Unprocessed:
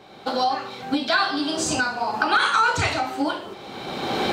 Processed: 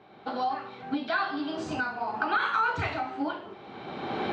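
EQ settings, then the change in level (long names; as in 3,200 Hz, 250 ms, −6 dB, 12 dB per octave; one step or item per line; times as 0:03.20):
high-pass filter 58 Hz
low-pass filter 2,500 Hz 12 dB per octave
notch filter 530 Hz, Q 12
−6.5 dB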